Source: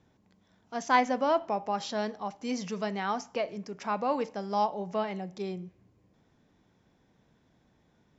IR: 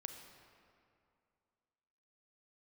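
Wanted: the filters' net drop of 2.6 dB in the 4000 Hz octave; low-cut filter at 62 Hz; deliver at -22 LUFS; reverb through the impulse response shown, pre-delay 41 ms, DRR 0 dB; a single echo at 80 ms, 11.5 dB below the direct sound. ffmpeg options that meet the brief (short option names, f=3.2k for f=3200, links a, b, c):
-filter_complex "[0:a]highpass=62,equalizer=f=4k:t=o:g=-3.5,aecho=1:1:80:0.266,asplit=2[a][b];[1:a]atrim=start_sample=2205,adelay=41[c];[b][c]afir=irnorm=-1:irlink=0,volume=3.5dB[d];[a][d]amix=inputs=2:normalize=0,volume=6.5dB"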